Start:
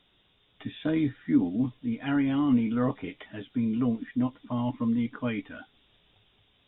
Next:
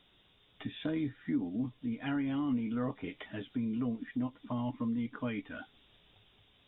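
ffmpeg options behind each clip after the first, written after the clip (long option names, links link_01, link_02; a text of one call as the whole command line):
ffmpeg -i in.wav -af "acompressor=threshold=-37dB:ratio=2" out.wav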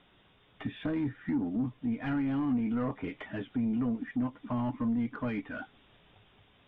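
ffmpeg -i in.wav -filter_complex "[0:a]asplit=2[link_01][link_02];[link_02]highpass=frequency=720:poles=1,volume=18dB,asoftclip=type=tanh:threshold=-23dB[link_03];[link_01][link_03]amix=inputs=2:normalize=0,lowpass=frequency=1800:poles=1,volume=-6dB,bass=frequency=250:gain=10,treble=frequency=4000:gain=-14,volume=-3dB" out.wav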